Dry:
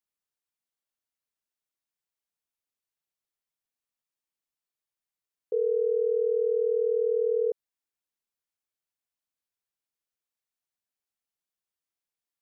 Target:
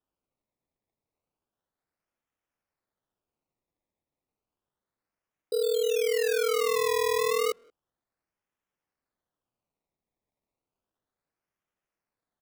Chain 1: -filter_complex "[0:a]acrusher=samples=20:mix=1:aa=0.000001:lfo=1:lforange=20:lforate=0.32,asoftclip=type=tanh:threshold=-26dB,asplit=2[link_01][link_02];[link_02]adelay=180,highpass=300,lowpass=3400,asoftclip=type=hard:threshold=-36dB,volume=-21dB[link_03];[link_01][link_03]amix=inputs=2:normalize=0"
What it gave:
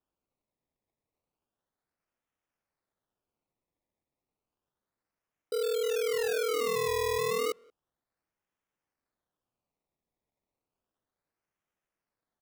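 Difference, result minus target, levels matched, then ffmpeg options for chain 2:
soft clipping: distortion +15 dB
-filter_complex "[0:a]acrusher=samples=20:mix=1:aa=0.000001:lfo=1:lforange=20:lforate=0.32,asoftclip=type=tanh:threshold=-16dB,asplit=2[link_01][link_02];[link_02]adelay=180,highpass=300,lowpass=3400,asoftclip=type=hard:threshold=-36dB,volume=-21dB[link_03];[link_01][link_03]amix=inputs=2:normalize=0"

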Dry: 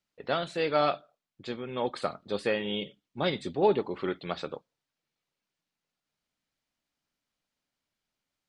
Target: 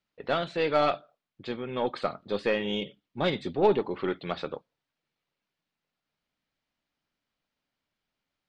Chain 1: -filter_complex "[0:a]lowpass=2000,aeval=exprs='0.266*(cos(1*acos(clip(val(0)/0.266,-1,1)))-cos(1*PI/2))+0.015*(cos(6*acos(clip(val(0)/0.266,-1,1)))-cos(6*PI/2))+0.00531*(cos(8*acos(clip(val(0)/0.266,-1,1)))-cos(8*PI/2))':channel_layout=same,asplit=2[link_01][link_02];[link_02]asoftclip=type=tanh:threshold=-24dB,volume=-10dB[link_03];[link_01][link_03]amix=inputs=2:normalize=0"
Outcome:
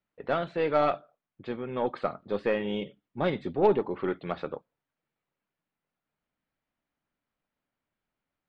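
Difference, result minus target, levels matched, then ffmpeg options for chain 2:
4,000 Hz band −7.5 dB
-filter_complex "[0:a]lowpass=4300,aeval=exprs='0.266*(cos(1*acos(clip(val(0)/0.266,-1,1)))-cos(1*PI/2))+0.015*(cos(6*acos(clip(val(0)/0.266,-1,1)))-cos(6*PI/2))+0.00531*(cos(8*acos(clip(val(0)/0.266,-1,1)))-cos(8*PI/2))':channel_layout=same,asplit=2[link_01][link_02];[link_02]asoftclip=type=tanh:threshold=-24dB,volume=-10dB[link_03];[link_01][link_03]amix=inputs=2:normalize=0"

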